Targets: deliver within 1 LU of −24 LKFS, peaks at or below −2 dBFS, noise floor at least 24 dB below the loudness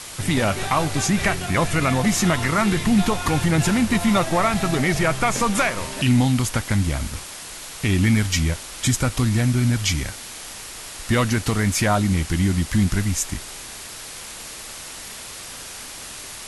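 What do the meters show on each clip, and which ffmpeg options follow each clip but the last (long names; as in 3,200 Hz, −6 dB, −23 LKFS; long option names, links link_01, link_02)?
background noise floor −37 dBFS; target noise floor −45 dBFS; integrated loudness −21.0 LKFS; sample peak −7.5 dBFS; target loudness −24.0 LKFS
→ -af "afftdn=noise_reduction=8:noise_floor=-37"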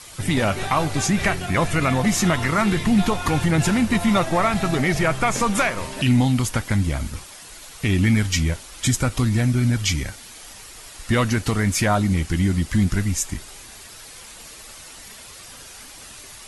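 background noise floor −42 dBFS; target noise floor −45 dBFS
→ -af "afftdn=noise_reduction=6:noise_floor=-42"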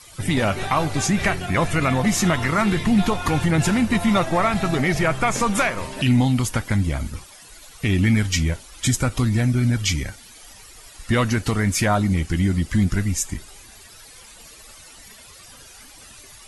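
background noise floor −45 dBFS; integrated loudness −21.0 LKFS; sample peak −8.0 dBFS; target loudness −24.0 LKFS
→ -af "volume=-3dB"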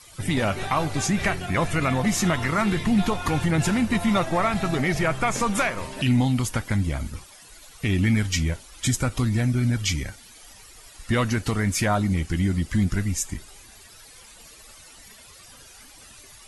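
integrated loudness −24.0 LKFS; sample peak −11.0 dBFS; background noise floor −48 dBFS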